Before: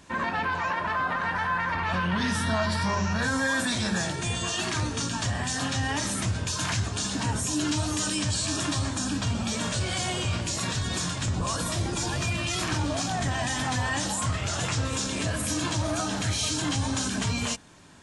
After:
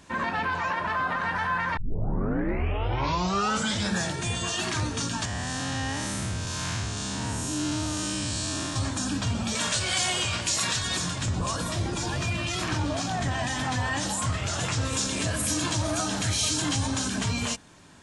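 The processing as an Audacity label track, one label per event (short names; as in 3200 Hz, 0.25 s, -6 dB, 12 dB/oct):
1.770000	1.770000	tape start 2.16 s
5.250000	8.760000	time blur width 0.197 s
9.550000	10.970000	tilt shelf lows -5.5 dB, about 640 Hz
11.510000	14.020000	high shelf 8100 Hz -7.5 dB
14.810000	16.870000	high shelf 4700 Hz +4.5 dB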